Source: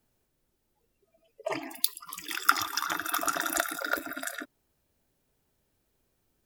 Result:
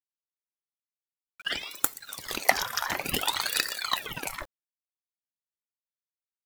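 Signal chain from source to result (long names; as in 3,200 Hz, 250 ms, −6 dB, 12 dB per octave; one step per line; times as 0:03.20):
bit reduction 9 bits
ring modulator whose carrier an LFO sweeps 1,700 Hz, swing 90%, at 0.55 Hz
level +4 dB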